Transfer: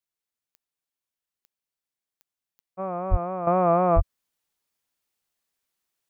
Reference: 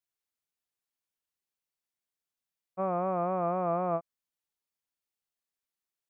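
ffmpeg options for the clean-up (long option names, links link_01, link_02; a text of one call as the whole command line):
ffmpeg -i in.wav -filter_complex "[0:a]adeclick=threshold=4,asplit=3[link_01][link_02][link_03];[link_01]afade=type=out:start_time=3.1:duration=0.02[link_04];[link_02]highpass=frequency=140:width=0.5412,highpass=frequency=140:width=1.3066,afade=type=in:start_time=3.1:duration=0.02,afade=type=out:start_time=3.22:duration=0.02[link_05];[link_03]afade=type=in:start_time=3.22:duration=0.02[link_06];[link_04][link_05][link_06]amix=inputs=3:normalize=0,asplit=3[link_07][link_08][link_09];[link_07]afade=type=out:start_time=3.95:duration=0.02[link_10];[link_08]highpass=frequency=140:width=0.5412,highpass=frequency=140:width=1.3066,afade=type=in:start_time=3.95:duration=0.02,afade=type=out:start_time=4.07:duration=0.02[link_11];[link_09]afade=type=in:start_time=4.07:duration=0.02[link_12];[link_10][link_11][link_12]amix=inputs=3:normalize=0,asetnsamples=nb_out_samples=441:pad=0,asendcmd='3.47 volume volume -9.5dB',volume=0dB" out.wav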